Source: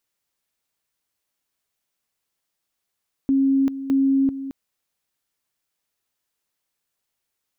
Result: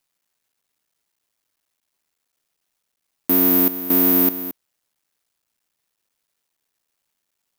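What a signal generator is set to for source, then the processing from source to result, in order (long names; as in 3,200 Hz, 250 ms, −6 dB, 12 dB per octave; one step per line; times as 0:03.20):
tone at two levels in turn 271 Hz −15 dBFS, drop 12.5 dB, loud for 0.39 s, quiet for 0.22 s, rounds 2
sub-harmonics by changed cycles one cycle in 3, muted
high-pass filter 130 Hz
bad sample-rate conversion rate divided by 3×, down none, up zero stuff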